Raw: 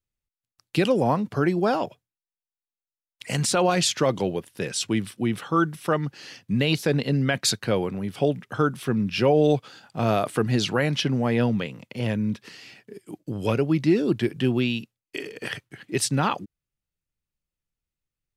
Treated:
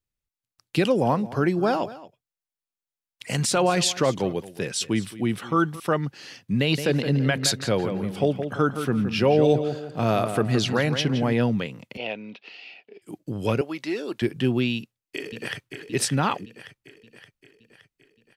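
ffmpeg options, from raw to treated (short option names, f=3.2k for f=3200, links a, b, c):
-filter_complex "[0:a]asettb=1/sr,asplit=3[a][b][c];[a]atrim=end=0.834[d];[b]atrim=start=0.83:end=5.8,asetpts=PTS-STARTPTS,afade=t=in:d=0.004:c=qsin,afade=t=out:st=4.966:d=0.004:c=qsin,aecho=1:1:220:0.133,atrim=end_sample=219177[e];[c]atrim=start=5.796[f];[d][e]acrossfade=d=0.004:c1=hsin:c2=qsin[g];[g][f]acrossfade=d=0.004:c1=qsin:c2=hsin,asettb=1/sr,asplit=3[h][i][j];[h]atrim=end=6.614[k];[i]atrim=start=6.61:end=11.33,asetpts=PTS-STARTPTS,afade=t=in:d=0.004:c=qsin,afade=t=out:st=4.716:d=0.004:c=qsin,asplit=2[l][m];[m]adelay=168,lowpass=f=2.9k:p=1,volume=-8dB,asplit=2[n][o];[o]adelay=168,lowpass=f=2.9k:p=1,volume=0.36,asplit=2[p][q];[q]adelay=168,lowpass=f=2.9k:p=1,volume=0.36,asplit=2[r][s];[s]adelay=168,lowpass=f=2.9k:p=1,volume=0.36[t];[l][n][p][r][t]amix=inputs=5:normalize=0,atrim=end_sample=208152[u];[j]atrim=start=11.326[v];[k][u]acrossfade=d=0.004:c1=hsin:c2=qsin[w];[w][v]acrossfade=d=0.004:c1=qsin:c2=hsin,asettb=1/sr,asplit=3[x][y][z];[x]atrim=end=11.974[aa];[y]atrim=start=11.97:end=13.02,asetpts=PTS-STARTPTS,afade=t=in:d=0.004:c=qsin,afade=t=out:st=1.046:d=0.004:c=qsin,highpass=480,equalizer=f=720:t=q:w=4:g=7,equalizer=f=1.1k:t=q:w=4:g=-7,equalizer=f=1.7k:t=q:w=4:g=-9,equalizer=f=2.6k:t=q:w=4:g=8,lowpass=f=4.1k:w=0.5412,lowpass=f=4.1k:w=1.3066[ab];[z]atrim=start=13.016[ac];[aa][ab]acrossfade=d=0.004:c1=hsin:c2=qsin[ad];[ad][ac]acrossfade=d=0.004:c1=qsin:c2=hsin,asettb=1/sr,asplit=3[ae][af][ag];[ae]atrim=end=13.614[ah];[af]atrim=start=13.61:end=14.22,asetpts=PTS-STARTPTS,afade=t=in:d=0.004:c=qsin,afade=t=out:st=0.606:d=0.004:c=qsin,highpass=540[ai];[ag]atrim=start=14.216[aj];[ah][ai]acrossfade=d=0.004:c1=hsin:c2=qsin[ak];[ak][aj]acrossfade=d=0.004:c1=qsin:c2=hsin,asplit=2[al][am];[am]afade=t=in:st=14.75:d=0.01,afade=t=out:st=15.8:d=0.01,aecho=0:1:570|1140|1710|2280|2850|3420|3990:0.446684|0.245676|0.135122|0.074317|0.0408743|0.0224809|0.0123645[an];[al][an]amix=inputs=2:normalize=0"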